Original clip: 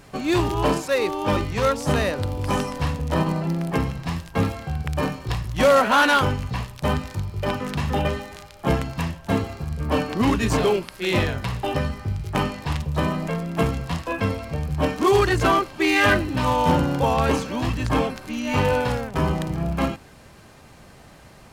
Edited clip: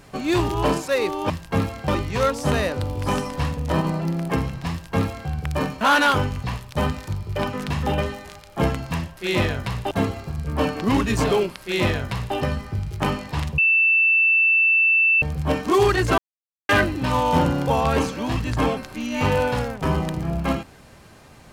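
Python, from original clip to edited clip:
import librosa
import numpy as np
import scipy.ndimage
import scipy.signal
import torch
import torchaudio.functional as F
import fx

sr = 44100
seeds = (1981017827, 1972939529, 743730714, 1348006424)

y = fx.edit(x, sr, fx.duplicate(start_s=4.13, length_s=0.58, to_s=1.3),
    fx.cut(start_s=5.23, length_s=0.65),
    fx.duplicate(start_s=10.95, length_s=0.74, to_s=9.24),
    fx.bleep(start_s=12.91, length_s=1.64, hz=2660.0, db=-14.0),
    fx.silence(start_s=15.51, length_s=0.51), tone=tone)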